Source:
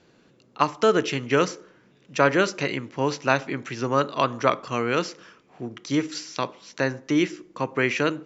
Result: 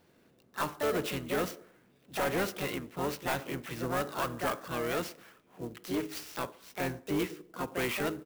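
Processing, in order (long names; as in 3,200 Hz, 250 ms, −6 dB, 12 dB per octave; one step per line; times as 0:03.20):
pitch-shifted copies added −12 semitones −12 dB, +5 semitones −5 dB
soft clipping −17.5 dBFS, distortion −9 dB
converter with an unsteady clock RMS 0.031 ms
level −7.5 dB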